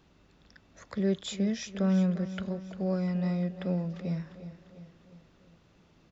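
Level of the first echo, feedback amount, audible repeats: -13.5 dB, 54%, 5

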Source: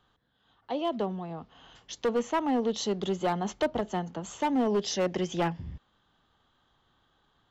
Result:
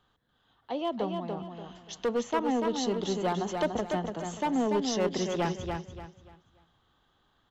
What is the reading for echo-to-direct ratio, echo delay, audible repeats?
-4.5 dB, 0.29 s, 3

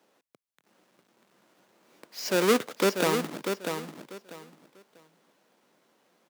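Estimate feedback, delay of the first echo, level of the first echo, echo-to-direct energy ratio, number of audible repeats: 22%, 0.643 s, -6.5 dB, -6.5 dB, 3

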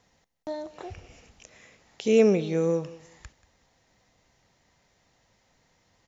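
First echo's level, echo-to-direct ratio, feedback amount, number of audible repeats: -19.0 dB, -19.0 dB, 22%, 2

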